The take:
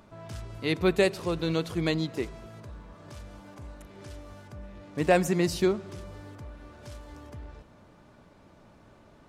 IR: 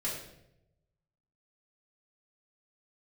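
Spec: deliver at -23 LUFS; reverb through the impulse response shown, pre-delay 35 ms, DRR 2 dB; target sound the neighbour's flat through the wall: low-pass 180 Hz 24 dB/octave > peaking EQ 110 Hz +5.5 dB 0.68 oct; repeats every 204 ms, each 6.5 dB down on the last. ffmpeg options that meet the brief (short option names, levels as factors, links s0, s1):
-filter_complex "[0:a]aecho=1:1:204|408|612|816|1020|1224:0.473|0.222|0.105|0.0491|0.0231|0.0109,asplit=2[s0][s1];[1:a]atrim=start_sample=2205,adelay=35[s2];[s1][s2]afir=irnorm=-1:irlink=0,volume=0.501[s3];[s0][s3]amix=inputs=2:normalize=0,lowpass=f=180:w=0.5412,lowpass=f=180:w=1.3066,equalizer=f=110:t=o:w=0.68:g=5.5,volume=3.55"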